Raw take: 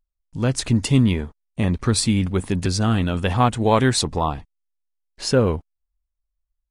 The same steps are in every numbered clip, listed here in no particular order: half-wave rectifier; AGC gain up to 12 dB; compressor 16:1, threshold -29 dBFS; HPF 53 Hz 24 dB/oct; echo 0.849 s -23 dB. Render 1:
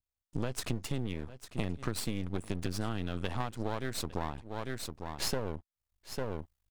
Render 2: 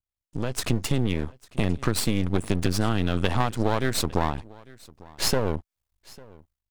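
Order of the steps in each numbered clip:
echo > AGC > HPF > half-wave rectifier > compressor; HPF > compressor > AGC > echo > half-wave rectifier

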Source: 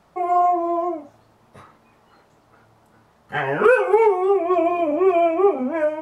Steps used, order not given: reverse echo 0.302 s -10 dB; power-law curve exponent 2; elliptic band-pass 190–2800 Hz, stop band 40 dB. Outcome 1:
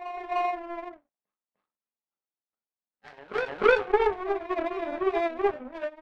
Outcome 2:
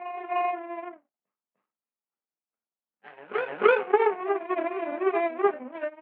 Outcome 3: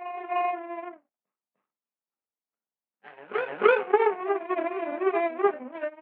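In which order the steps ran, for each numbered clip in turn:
elliptic band-pass > power-law curve > reverse echo; power-law curve > reverse echo > elliptic band-pass; power-law curve > elliptic band-pass > reverse echo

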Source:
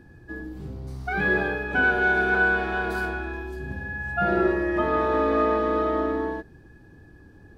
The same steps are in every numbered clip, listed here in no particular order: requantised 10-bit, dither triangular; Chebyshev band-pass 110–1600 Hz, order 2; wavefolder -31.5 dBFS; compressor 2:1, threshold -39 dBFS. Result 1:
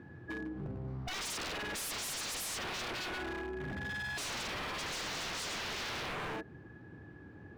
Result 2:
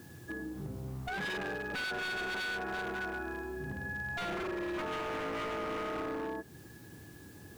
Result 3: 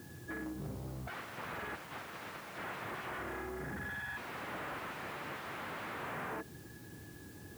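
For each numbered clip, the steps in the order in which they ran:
requantised > Chebyshev band-pass > wavefolder > compressor; Chebyshev band-pass > requantised > compressor > wavefolder; wavefolder > compressor > Chebyshev band-pass > requantised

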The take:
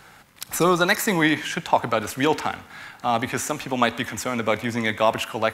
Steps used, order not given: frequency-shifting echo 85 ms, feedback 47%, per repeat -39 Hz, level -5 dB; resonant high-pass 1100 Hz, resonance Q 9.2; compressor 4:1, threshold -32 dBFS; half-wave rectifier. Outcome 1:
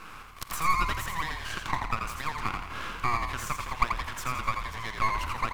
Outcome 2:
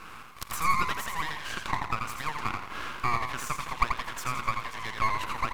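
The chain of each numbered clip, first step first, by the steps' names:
compressor > resonant high-pass > half-wave rectifier > frequency-shifting echo; compressor > resonant high-pass > frequency-shifting echo > half-wave rectifier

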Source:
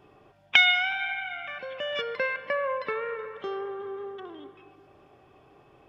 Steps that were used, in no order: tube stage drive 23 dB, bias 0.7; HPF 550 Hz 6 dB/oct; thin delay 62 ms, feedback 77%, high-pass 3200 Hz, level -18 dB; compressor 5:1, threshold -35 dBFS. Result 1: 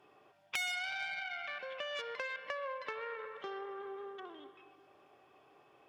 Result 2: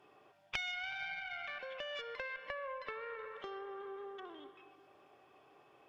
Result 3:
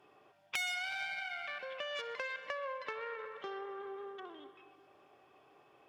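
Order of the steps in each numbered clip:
thin delay > tube stage > compressor > HPF; thin delay > compressor > HPF > tube stage; tube stage > thin delay > compressor > HPF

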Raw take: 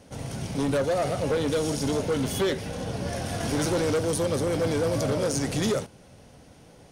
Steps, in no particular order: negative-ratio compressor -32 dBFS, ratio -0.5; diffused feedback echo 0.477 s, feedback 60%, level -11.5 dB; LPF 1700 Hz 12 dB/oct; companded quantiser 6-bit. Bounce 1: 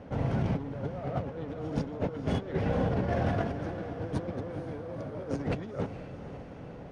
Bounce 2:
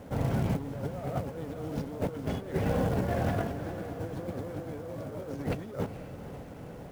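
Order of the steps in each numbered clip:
companded quantiser > LPF > negative-ratio compressor > diffused feedback echo; negative-ratio compressor > LPF > companded quantiser > diffused feedback echo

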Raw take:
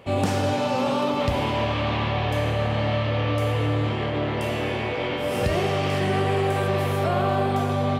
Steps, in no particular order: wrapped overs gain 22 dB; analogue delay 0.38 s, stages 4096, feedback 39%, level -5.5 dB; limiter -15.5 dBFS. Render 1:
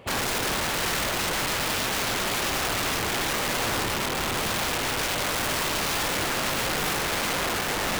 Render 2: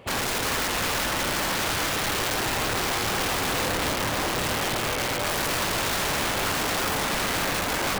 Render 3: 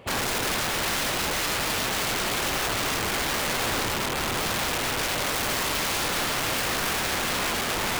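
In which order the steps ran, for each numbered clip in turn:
analogue delay > limiter > wrapped overs; limiter > wrapped overs > analogue delay; limiter > analogue delay > wrapped overs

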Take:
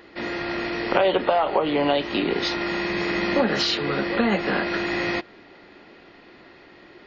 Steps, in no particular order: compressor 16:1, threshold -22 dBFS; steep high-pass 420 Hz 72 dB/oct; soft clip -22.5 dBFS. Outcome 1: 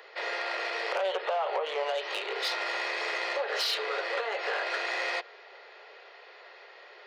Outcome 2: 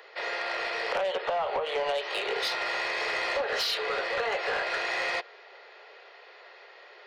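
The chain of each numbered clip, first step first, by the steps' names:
compressor > soft clip > steep high-pass; steep high-pass > compressor > soft clip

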